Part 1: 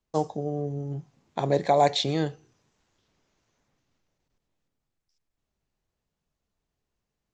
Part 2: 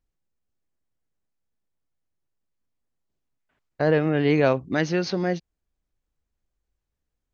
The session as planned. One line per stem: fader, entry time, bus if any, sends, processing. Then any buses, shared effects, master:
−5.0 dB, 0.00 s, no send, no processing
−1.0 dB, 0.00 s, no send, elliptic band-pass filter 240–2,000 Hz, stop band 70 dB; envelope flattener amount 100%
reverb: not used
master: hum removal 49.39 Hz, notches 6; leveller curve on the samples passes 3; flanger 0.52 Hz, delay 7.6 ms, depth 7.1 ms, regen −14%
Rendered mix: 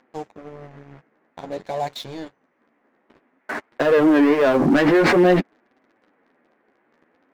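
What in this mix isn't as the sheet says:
stem 1 −5.0 dB → −14.5 dB
master: missing hum removal 49.39 Hz, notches 6

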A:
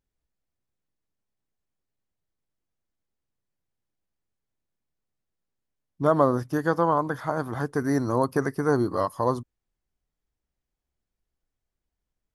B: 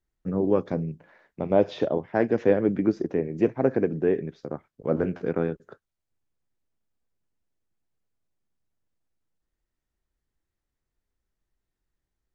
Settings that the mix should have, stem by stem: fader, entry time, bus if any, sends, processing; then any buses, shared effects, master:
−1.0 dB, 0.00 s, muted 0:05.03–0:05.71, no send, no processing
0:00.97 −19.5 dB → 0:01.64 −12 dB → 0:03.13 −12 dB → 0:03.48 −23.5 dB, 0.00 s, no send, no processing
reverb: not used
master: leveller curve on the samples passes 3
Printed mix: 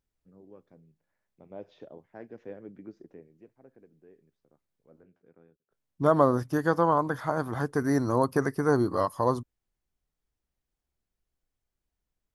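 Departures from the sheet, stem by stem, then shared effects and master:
stem B −19.5 dB → −29.5 dB
master: missing leveller curve on the samples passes 3

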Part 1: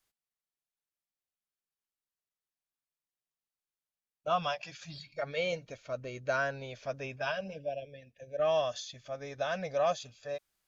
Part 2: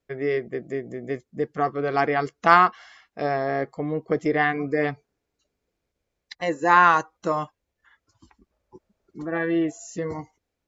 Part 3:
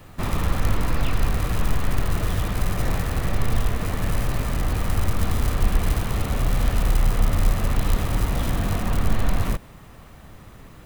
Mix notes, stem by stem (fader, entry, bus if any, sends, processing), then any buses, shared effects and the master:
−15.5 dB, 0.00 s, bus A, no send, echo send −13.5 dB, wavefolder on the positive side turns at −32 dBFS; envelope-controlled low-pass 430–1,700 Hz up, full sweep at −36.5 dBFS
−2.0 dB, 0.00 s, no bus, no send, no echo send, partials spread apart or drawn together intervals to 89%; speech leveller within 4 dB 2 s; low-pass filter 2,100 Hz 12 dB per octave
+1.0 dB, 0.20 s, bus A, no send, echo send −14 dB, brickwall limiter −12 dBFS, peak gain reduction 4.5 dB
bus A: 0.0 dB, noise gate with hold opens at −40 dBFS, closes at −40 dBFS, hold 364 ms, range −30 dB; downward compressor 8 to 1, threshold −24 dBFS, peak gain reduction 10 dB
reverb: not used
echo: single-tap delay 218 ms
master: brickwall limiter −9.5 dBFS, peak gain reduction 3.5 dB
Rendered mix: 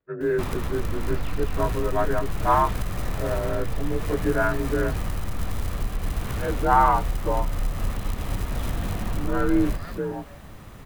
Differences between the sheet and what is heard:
stem 3: missing brickwall limiter −12 dBFS, peak gain reduction 4.5 dB
master: missing brickwall limiter −9.5 dBFS, peak gain reduction 3.5 dB

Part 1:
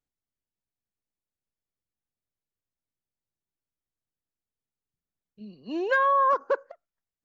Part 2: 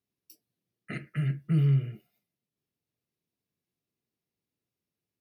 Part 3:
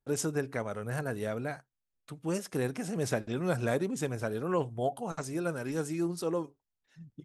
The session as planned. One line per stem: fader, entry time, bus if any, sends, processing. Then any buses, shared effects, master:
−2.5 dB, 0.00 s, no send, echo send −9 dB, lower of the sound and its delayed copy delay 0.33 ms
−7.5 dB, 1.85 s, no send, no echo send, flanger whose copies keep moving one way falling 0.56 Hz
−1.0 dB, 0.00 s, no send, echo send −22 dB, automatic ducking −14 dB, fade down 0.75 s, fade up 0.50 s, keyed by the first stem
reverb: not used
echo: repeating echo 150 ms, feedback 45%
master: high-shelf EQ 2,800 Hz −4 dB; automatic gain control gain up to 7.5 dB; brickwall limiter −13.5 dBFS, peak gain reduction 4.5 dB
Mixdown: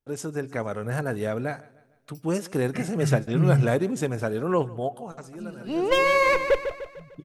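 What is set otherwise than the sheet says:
stem 2 −7.5 dB → 0.0 dB
master: missing brickwall limiter −13.5 dBFS, peak gain reduction 4.5 dB

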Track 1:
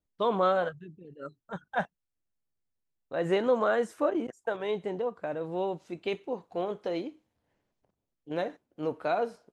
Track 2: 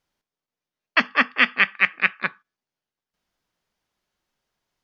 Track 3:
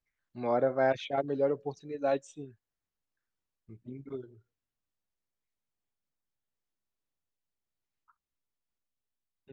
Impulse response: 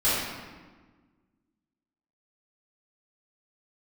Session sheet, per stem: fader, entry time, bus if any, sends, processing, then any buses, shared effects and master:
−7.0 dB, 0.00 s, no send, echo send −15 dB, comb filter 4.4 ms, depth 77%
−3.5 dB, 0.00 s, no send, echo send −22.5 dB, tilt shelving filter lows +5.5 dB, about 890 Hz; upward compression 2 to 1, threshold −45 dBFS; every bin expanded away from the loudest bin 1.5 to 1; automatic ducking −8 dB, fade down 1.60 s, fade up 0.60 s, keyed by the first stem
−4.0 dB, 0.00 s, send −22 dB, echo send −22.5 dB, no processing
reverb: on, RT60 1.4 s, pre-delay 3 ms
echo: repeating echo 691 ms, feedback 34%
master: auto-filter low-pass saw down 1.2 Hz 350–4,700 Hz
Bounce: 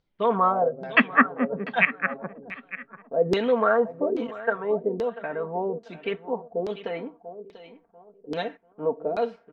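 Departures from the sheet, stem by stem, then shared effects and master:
stem 1 −7.0 dB → 0.0 dB
stem 2 −3.5 dB → +4.0 dB
stem 3 −4.0 dB → −12.0 dB

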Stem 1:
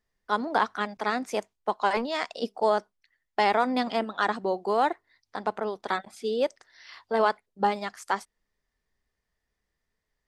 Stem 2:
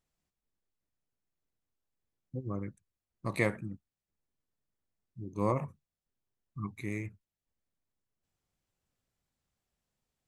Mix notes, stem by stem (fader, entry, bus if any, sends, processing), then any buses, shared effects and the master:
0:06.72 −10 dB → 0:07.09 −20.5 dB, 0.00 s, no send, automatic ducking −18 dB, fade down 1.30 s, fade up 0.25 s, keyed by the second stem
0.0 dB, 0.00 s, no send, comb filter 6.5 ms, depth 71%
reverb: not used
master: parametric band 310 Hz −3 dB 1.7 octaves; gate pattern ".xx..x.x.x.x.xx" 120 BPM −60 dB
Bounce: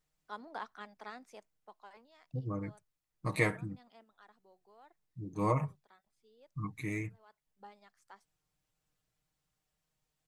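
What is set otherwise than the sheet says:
stem 1 −10.0 dB → −17.5 dB
master: missing gate pattern ".xx..x.x.x.x.xx" 120 BPM −60 dB

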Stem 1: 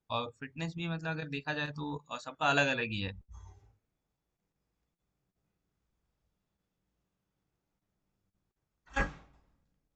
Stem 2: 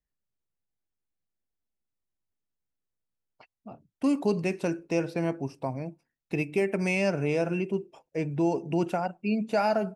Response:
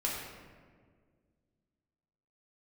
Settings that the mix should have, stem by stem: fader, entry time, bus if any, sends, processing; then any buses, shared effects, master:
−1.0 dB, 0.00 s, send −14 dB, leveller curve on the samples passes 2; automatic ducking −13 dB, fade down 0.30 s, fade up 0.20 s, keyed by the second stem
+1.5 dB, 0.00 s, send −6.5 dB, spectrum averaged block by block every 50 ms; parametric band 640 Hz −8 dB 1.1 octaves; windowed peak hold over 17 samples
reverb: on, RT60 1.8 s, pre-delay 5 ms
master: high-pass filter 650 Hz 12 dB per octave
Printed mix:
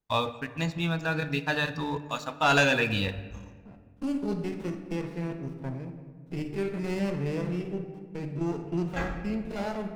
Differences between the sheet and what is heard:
stem 2 +1.5 dB → −5.0 dB
master: missing high-pass filter 650 Hz 12 dB per octave

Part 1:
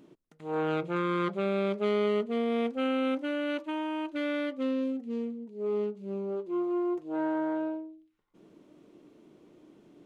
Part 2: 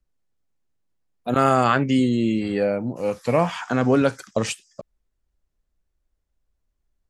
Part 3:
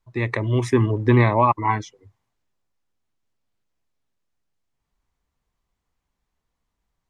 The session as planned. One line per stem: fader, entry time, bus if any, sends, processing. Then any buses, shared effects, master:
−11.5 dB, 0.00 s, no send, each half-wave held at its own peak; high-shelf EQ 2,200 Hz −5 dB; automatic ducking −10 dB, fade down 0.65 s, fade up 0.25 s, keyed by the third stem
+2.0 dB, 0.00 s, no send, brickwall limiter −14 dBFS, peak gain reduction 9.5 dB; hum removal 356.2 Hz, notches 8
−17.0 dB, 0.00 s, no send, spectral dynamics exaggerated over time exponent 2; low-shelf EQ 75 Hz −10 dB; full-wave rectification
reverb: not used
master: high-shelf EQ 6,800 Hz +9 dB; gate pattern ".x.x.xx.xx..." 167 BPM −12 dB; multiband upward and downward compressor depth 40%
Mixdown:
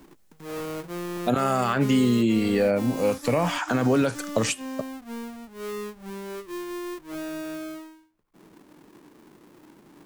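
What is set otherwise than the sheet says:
stem 3: muted
master: missing gate pattern ".x.x.xx.xx..." 167 BPM −12 dB

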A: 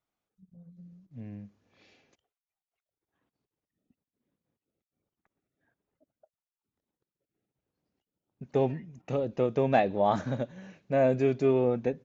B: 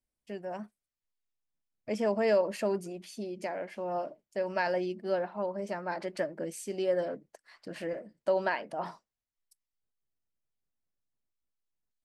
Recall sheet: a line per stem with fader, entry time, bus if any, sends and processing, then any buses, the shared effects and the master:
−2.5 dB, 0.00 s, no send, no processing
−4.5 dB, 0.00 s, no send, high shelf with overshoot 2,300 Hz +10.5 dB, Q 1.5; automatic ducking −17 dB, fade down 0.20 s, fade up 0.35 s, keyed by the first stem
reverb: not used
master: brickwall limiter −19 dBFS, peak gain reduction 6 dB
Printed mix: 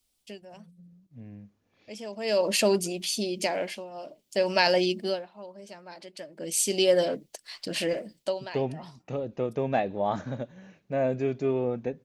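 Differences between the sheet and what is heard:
stem B −4.5 dB → +7.5 dB
master: missing brickwall limiter −19 dBFS, peak gain reduction 6 dB

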